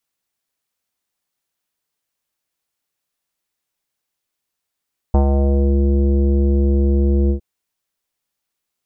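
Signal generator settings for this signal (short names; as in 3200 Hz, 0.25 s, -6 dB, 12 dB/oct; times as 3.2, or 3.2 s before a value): synth note square C#2 24 dB/oct, low-pass 430 Hz, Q 1.9, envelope 1 oct, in 0.61 s, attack 2.7 ms, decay 0.10 s, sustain -4 dB, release 0.10 s, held 2.16 s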